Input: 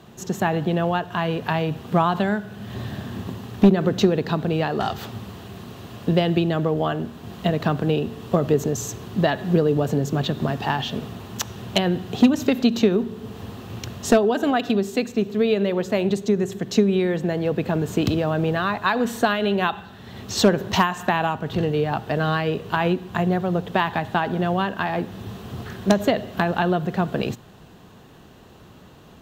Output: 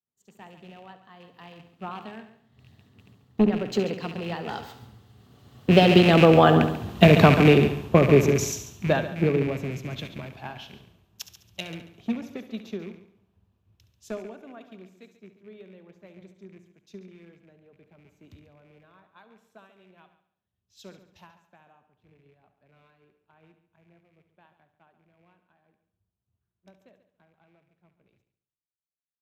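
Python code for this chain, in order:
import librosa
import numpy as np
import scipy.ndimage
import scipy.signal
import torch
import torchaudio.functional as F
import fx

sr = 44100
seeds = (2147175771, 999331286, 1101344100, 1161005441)

y = fx.rattle_buzz(x, sr, strikes_db=-25.0, level_db=-19.0)
y = fx.doppler_pass(y, sr, speed_mps=23, closest_m=17.0, pass_at_s=6.77)
y = fx.echo_heads(y, sr, ms=70, heads='first and second', feedback_pct=47, wet_db=-12)
y = fx.band_widen(y, sr, depth_pct=100)
y = F.gain(torch.from_numpy(y), -1.0).numpy()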